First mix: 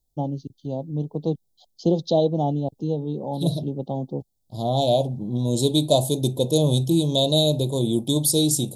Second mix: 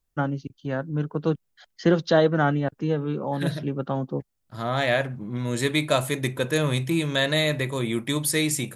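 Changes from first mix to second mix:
second voice −5.0 dB
master: remove elliptic band-stop filter 810–3,600 Hz, stop band 60 dB

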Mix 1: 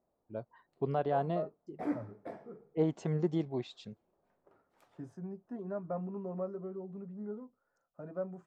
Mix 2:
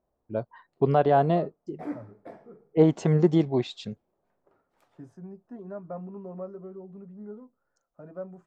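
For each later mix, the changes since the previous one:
first voice +11.0 dB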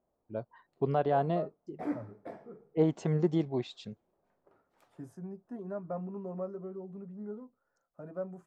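first voice −7.5 dB
second voice: remove low-pass filter 5,800 Hz 12 dB per octave

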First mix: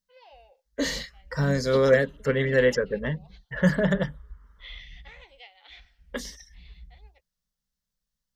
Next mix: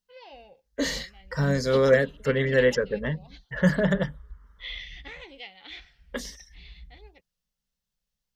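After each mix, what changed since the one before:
first voice: remove four-pole ladder high-pass 470 Hz, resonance 30%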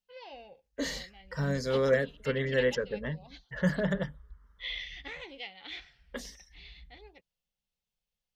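second voice −6.5 dB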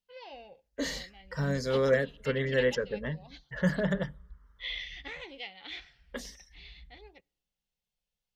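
reverb: on, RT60 0.75 s

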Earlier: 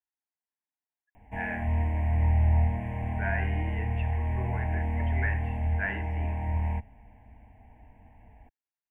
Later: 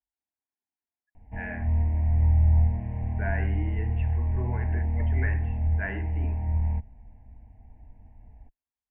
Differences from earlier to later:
background −8.0 dB
master: add spectral tilt −3 dB per octave

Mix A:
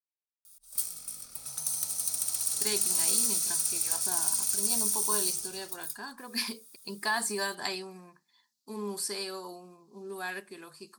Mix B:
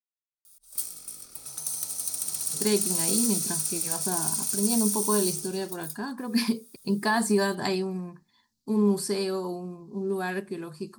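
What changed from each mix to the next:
speech: remove high-pass filter 1,400 Hz 6 dB per octave
background: add parametric band 360 Hz +11.5 dB 0.56 octaves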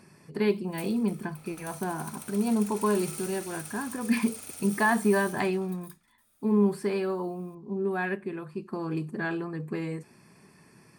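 speech: entry −2.25 s
master: add high shelf with overshoot 3,500 Hz −13 dB, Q 1.5

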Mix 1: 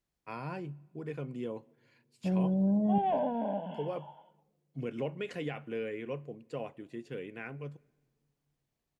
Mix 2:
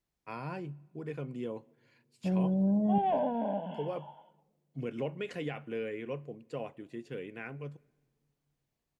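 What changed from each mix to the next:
background: send +8.0 dB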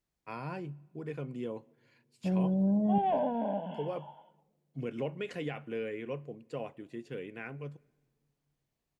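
nothing changed

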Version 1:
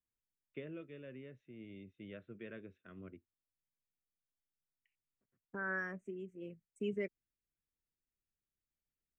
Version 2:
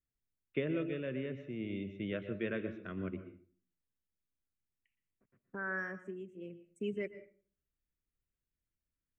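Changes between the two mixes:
first voice +10.5 dB
reverb: on, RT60 0.45 s

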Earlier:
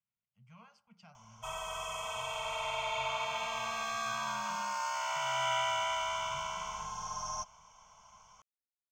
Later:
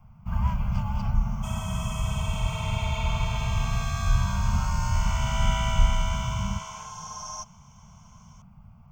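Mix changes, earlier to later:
speech +7.5 dB
first sound: unmuted
master: add high-shelf EQ 5,700 Hz +7 dB

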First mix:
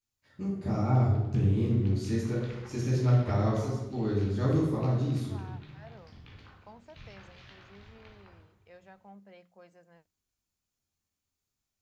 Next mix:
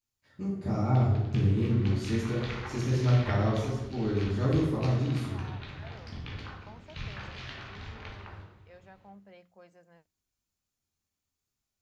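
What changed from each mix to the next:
background +11.0 dB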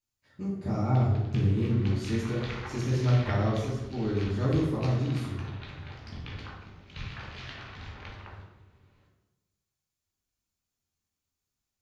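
second voice: muted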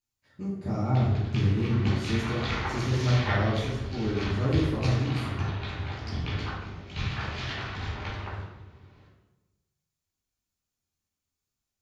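background: send +9.5 dB

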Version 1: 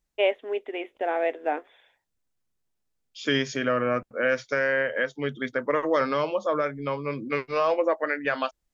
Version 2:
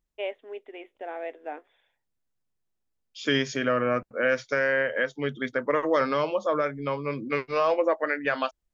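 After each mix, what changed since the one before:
first voice −9.5 dB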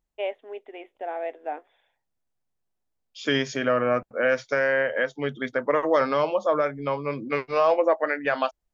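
master: add parametric band 750 Hz +6 dB 0.8 octaves

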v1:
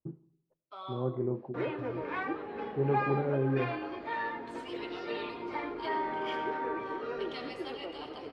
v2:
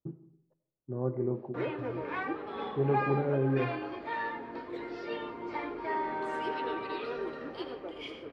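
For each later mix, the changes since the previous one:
first voice: send +9.0 dB
second voice: entry +1.75 s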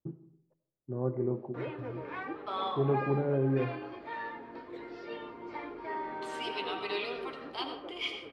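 second voice +9.0 dB
background −4.5 dB

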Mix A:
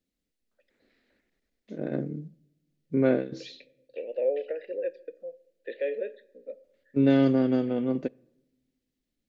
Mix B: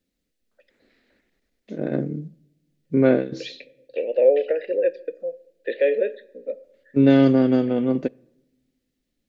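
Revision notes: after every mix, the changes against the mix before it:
first voice +6.0 dB
second voice +10.5 dB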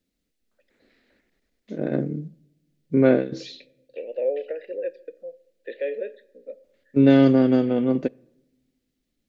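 second voice −8.5 dB

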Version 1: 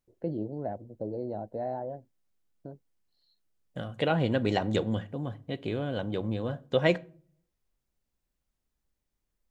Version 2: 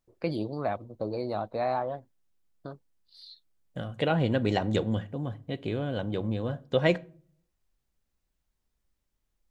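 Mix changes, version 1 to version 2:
first voice: remove moving average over 37 samples
master: add low-shelf EQ 120 Hz +4 dB

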